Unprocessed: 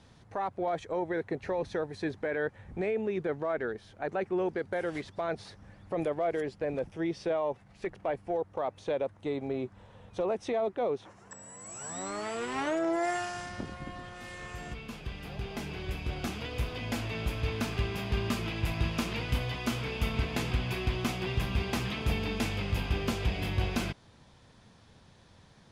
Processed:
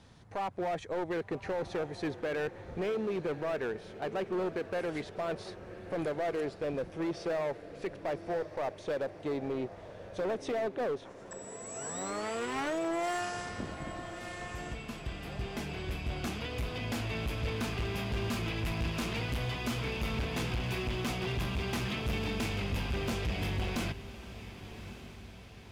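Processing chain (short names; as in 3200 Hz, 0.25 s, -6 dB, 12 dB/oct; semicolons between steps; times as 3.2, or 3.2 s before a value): hard clip -29.5 dBFS, distortion -10 dB; diffused feedback echo 1.153 s, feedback 51%, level -13.5 dB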